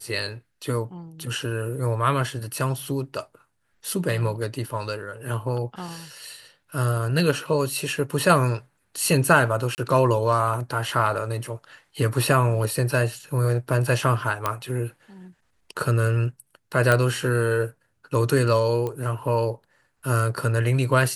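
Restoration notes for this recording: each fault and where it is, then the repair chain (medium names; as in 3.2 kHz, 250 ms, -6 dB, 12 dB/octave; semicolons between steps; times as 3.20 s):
9.75–9.78 s: dropout 29 ms
14.46 s: pop -9 dBFS
16.92 s: pop -7 dBFS
18.87 s: pop -17 dBFS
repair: de-click; interpolate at 9.75 s, 29 ms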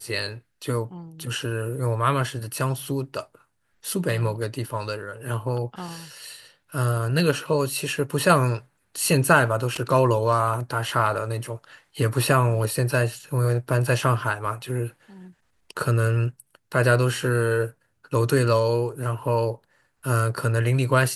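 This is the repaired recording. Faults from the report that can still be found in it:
nothing left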